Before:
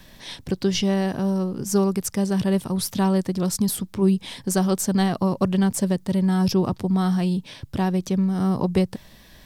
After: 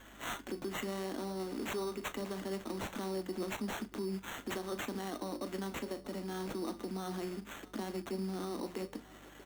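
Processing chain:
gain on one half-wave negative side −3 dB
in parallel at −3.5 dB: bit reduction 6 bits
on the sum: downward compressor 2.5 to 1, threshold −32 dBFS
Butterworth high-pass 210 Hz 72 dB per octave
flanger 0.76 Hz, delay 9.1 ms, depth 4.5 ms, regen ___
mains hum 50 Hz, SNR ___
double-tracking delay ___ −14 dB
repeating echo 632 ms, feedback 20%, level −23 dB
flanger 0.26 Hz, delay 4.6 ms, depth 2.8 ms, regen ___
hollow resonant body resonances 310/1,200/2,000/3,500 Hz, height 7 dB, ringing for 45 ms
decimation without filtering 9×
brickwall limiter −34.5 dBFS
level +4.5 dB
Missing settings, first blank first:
−79%, 22 dB, 37 ms, +70%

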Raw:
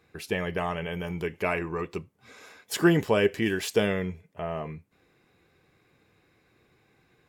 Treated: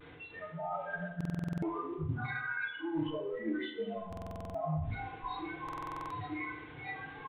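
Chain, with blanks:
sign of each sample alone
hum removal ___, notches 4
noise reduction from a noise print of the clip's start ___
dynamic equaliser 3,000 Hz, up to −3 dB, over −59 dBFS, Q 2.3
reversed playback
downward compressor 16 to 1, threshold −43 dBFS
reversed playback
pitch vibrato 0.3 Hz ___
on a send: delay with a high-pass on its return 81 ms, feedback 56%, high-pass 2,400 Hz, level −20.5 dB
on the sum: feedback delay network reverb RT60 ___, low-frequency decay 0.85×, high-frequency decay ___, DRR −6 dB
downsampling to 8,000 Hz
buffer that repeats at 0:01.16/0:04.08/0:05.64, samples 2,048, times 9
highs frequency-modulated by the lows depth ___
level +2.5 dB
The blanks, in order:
145.8 Hz, 30 dB, 18 cents, 0.87 s, 0.55×, 0.13 ms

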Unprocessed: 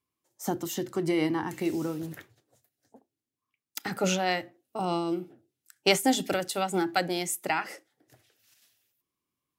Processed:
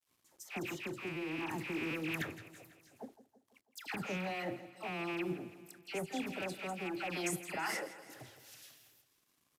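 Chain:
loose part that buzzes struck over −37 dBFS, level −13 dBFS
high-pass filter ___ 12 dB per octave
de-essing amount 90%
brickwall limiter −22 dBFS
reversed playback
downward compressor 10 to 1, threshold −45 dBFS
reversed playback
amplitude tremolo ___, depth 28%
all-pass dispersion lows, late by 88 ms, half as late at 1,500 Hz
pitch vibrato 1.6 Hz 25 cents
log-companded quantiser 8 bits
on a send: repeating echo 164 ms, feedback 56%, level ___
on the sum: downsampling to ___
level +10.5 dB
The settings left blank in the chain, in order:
76 Hz, 0.54 Hz, −15 dB, 32,000 Hz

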